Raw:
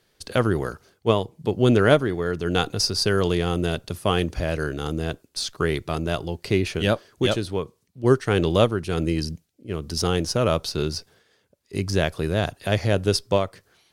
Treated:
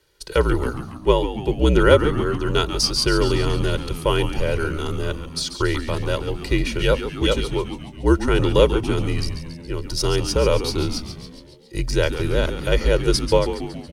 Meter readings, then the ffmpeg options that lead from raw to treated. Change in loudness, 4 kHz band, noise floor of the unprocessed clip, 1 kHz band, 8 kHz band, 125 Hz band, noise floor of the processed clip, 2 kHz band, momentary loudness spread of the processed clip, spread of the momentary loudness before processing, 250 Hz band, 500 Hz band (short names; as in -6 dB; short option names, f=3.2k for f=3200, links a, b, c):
+2.5 dB, +3.0 dB, -67 dBFS, +2.0 dB, +2.5 dB, +1.5 dB, -40 dBFS, +2.0 dB, 10 LU, 10 LU, +1.5 dB, +2.5 dB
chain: -filter_complex "[0:a]afreqshift=-57,aecho=1:1:2.1:0.78,asplit=8[a][b][c][d][e][f][g][h];[b]adelay=139,afreqshift=-92,volume=-10dB[i];[c]adelay=278,afreqshift=-184,volume=-14.3dB[j];[d]adelay=417,afreqshift=-276,volume=-18.6dB[k];[e]adelay=556,afreqshift=-368,volume=-22.9dB[l];[f]adelay=695,afreqshift=-460,volume=-27.2dB[m];[g]adelay=834,afreqshift=-552,volume=-31.5dB[n];[h]adelay=973,afreqshift=-644,volume=-35.8dB[o];[a][i][j][k][l][m][n][o]amix=inputs=8:normalize=0"